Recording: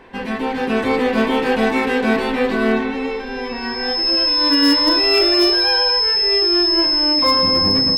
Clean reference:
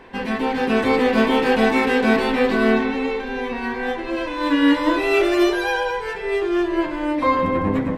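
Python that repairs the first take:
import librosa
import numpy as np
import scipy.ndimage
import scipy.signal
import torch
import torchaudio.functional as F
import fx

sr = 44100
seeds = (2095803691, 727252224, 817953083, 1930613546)

y = fx.fix_declip(x, sr, threshold_db=-7.5)
y = fx.notch(y, sr, hz=5200.0, q=30.0)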